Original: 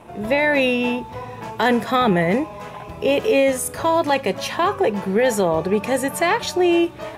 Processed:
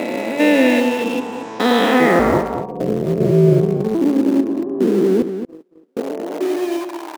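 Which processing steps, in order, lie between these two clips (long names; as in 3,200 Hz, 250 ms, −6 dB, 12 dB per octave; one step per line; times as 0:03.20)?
spectrum averaged block by block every 400 ms
hum removal 70.55 Hz, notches 14
low-pass filter sweep 8,100 Hz → 290 Hz, 0:01.41–0:02.98
in parallel at −11.5 dB: bit reduction 4 bits
on the sum: high-pass filter sweep 290 Hz → 840 Hz, 0:05.36–0:07.07
0:02.19–0:03.95: ring modulation 110 Hz
0:05.22–0:05.97: noise gate −12 dBFS, range −47 dB
slap from a distant wall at 39 metres, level −9 dB
level +3 dB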